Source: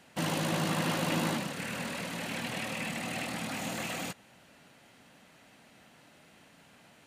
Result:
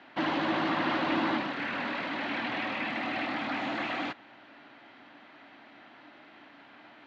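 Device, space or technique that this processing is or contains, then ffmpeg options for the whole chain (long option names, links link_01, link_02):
overdrive pedal into a guitar cabinet: -filter_complex "[0:a]asplit=2[link_01][link_02];[link_02]highpass=frequency=720:poles=1,volume=16dB,asoftclip=type=tanh:threshold=-18dB[link_03];[link_01][link_03]amix=inputs=2:normalize=0,lowpass=frequency=2000:poles=1,volume=-6dB,highpass=93,equalizer=frequency=170:width_type=q:width=4:gain=-10,equalizer=frequency=300:width_type=q:width=4:gain=9,equalizer=frequency=490:width_type=q:width=4:gain=-8,equalizer=frequency=2700:width_type=q:width=4:gain=-4,lowpass=frequency=4000:width=0.5412,lowpass=frequency=4000:width=1.3066"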